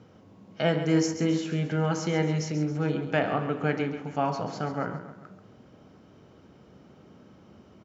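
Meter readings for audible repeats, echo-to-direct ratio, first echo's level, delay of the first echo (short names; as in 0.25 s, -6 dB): 3, -10.0 dB, -11.0 dB, 0.136 s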